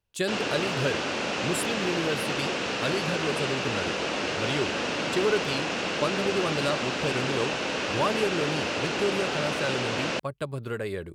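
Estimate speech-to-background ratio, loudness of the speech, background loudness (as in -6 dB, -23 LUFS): -3.0 dB, -31.5 LUFS, -28.5 LUFS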